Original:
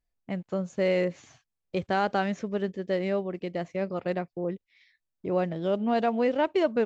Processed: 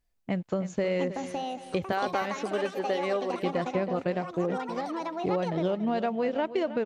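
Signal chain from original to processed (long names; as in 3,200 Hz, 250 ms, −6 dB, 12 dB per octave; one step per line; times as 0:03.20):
0:01.92–0:03.43: high-pass filter 350 Hz 12 dB per octave
downward compressor, threshold −31 dBFS, peak gain reduction 11.5 dB
repeating echo 317 ms, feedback 32%, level −13 dB
delay with pitch and tempo change per echo 791 ms, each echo +6 semitones, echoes 2, each echo −6 dB
level +5.5 dB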